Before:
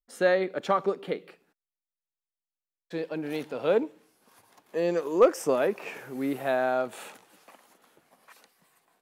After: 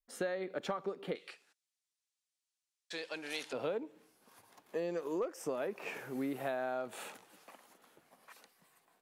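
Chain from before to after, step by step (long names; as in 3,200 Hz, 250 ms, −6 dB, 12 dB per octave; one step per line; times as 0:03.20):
downward compressor 12 to 1, threshold −30 dBFS, peak gain reduction 17.5 dB
0:01.15–0:03.53: meter weighting curve ITU-R 468
level −3 dB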